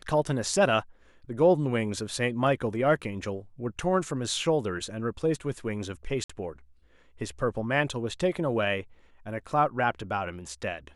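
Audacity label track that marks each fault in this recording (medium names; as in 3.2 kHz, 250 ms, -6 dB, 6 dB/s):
6.240000	6.290000	dropout 55 ms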